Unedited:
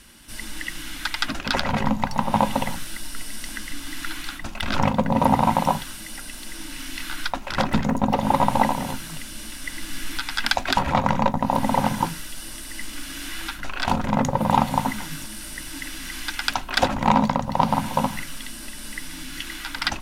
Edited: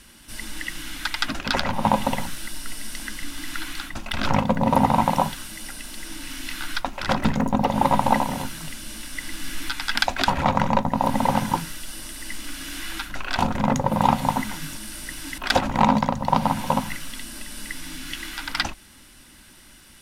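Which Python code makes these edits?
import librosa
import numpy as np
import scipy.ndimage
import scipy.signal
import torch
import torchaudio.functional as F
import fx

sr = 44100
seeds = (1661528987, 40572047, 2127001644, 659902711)

y = fx.edit(x, sr, fx.cut(start_s=1.73, length_s=0.49),
    fx.cut(start_s=15.87, length_s=0.78), tone=tone)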